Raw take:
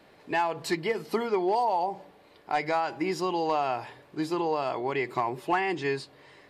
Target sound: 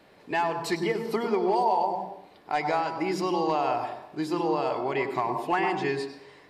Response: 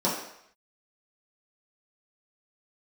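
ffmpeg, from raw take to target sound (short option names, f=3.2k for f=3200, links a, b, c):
-filter_complex "[0:a]asplit=2[a][b];[1:a]atrim=start_sample=2205,adelay=97[c];[b][c]afir=irnorm=-1:irlink=0,volume=-19.5dB[d];[a][d]amix=inputs=2:normalize=0"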